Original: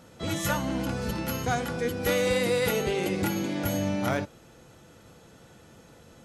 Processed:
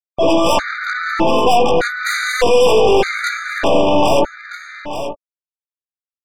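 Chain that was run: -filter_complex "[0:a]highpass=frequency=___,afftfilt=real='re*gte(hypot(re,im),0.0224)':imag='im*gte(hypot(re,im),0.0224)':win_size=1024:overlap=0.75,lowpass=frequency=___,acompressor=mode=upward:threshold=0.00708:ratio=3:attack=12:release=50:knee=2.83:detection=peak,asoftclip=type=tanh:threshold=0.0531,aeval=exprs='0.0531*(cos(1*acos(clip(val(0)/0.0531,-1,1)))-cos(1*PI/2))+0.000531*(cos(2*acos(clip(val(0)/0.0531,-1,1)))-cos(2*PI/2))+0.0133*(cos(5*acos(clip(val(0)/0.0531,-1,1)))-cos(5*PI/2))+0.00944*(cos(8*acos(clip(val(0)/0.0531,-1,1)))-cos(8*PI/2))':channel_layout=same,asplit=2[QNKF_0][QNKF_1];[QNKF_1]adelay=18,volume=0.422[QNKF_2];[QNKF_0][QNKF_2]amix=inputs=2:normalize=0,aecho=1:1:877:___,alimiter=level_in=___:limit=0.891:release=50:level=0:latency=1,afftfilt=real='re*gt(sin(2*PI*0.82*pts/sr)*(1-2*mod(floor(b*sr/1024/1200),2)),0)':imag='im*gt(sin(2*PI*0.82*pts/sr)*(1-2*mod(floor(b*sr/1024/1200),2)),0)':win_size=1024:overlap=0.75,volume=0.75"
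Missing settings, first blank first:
470, 2000, 0.188, 18.8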